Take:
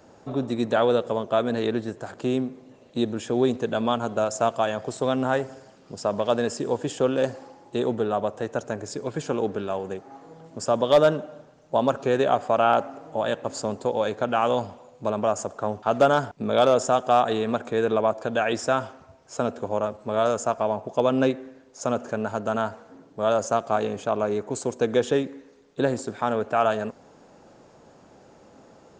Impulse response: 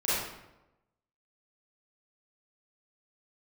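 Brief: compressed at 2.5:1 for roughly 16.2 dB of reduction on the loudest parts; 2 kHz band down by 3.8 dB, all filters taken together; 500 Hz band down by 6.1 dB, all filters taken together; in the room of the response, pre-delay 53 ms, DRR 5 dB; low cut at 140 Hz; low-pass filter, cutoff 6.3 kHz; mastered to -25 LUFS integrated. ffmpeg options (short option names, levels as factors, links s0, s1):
-filter_complex "[0:a]highpass=140,lowpass=6300,equalizer=f=500:t=o:g=-7.5,equalizer=f=2000:t=o:g=-5,acompressor=threshold=0.00631:ratio=2.5,asplit=2[s0][s1];[1:a]atrim=start_sample=2205,adelay=53[s2];[s1][s2]afir=irnorm=-1:irlink=0,volume=0.168[s3];[s0][s3]amix=inputs=2:normalize=0,volume=6.68"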